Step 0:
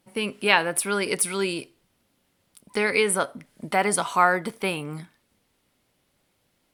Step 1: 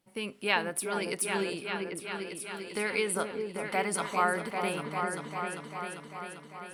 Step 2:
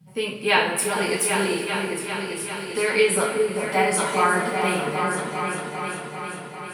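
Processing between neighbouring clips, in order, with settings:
delay with an opening low-pass 396 ms, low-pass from 750 Hz, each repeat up 2 oct, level -3 dB; trim -8.5 dB
band noise 120–190 Hz -57 dBFS; two-slope reverb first 0.43 s, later 4.2 s, from -18 dB, DRR -5 dB; trim +3 dB

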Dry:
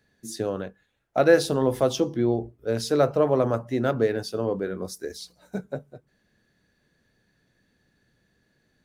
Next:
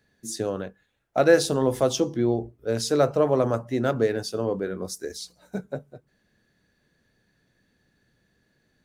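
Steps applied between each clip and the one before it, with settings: dynamic bell 7.3 kHz, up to +6 dB, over -53 dBFS, Q 1.3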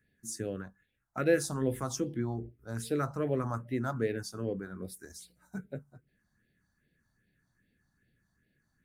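phase shifter stages 4, 2.5 Hz, lowest notch 430–1100 Hz; trim -5 dB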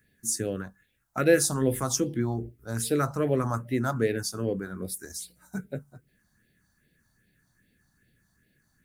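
treble shelf 5 kHz +8.5 dB; trim +5.5 dB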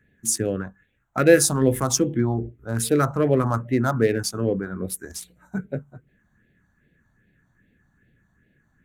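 local Wiener filter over 9 samples; trim +6 dB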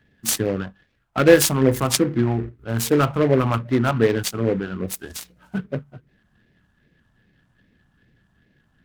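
delay time shaken by noise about 1.3 kHz, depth 0.041 ms; trim +2 dB

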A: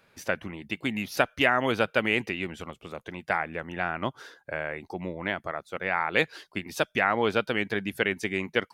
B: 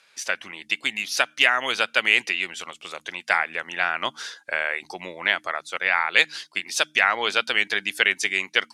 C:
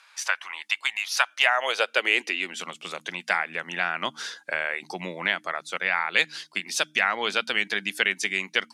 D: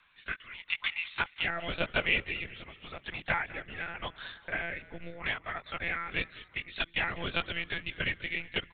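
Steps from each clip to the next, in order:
frequency weighting ITU-R 468; level rider gain up to 5.5 dB; de-hum 76.46 Hz, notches 4
in parallel at +1 dB: compression, threshold -30 dBFS, peak gain reduction 17.5 dB; on the sum: high-pass sweep 980 Hz -> 170 Hz, 1.20–2.73 s; trim -5.5 dB
monotone LPC vocoder at 8 kHz 170 Hz; rotary cabinet horn 0.85 Hz, later 5 Hz, at 6.94 s; frequency-shifting echo 199 ms, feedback 50%, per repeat -49 Hz, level -19 dB; trim -5 dB

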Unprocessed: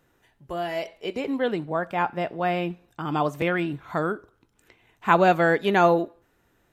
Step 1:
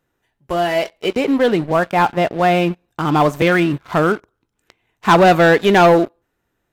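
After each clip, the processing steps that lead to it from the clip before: waveshaping leveller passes 3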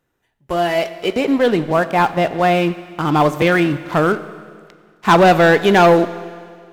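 Schroeder reverb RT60 2 s, combs from 29 ms, DRR 13.5 dB

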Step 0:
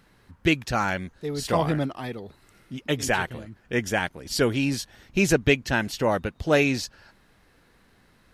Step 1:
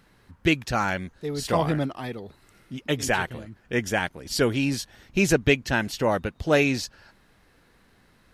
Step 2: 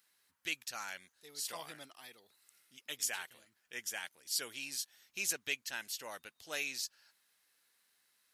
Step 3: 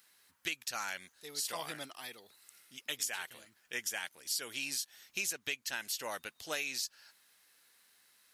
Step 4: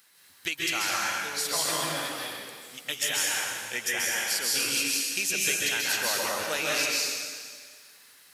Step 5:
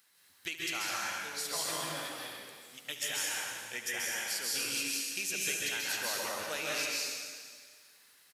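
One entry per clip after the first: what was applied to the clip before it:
no audible change
differentiator; trim -3.5 dB
compression 5:1, threshold -41 dBFS, peak gain reduction 11 dB; trim +7.5 dB
plate-style reverb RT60 1.8 s, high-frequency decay 1×, pre-delay 120 ms, DRR -5 dB; trim +5.5 dB
delay 72 ms -13 dB; trim -7.5 dB

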